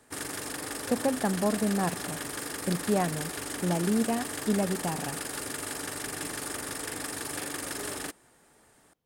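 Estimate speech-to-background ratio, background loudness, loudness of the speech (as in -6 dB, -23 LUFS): 4.5 dB, -34.5 LUFS, -30.0 LUFS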